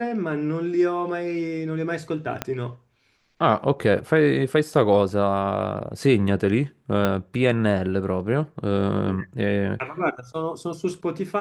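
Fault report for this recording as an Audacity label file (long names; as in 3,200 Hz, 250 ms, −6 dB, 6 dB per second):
2.420000	2.420000	click −10 dBFS
7.050000	7.050000	click −9 dBFS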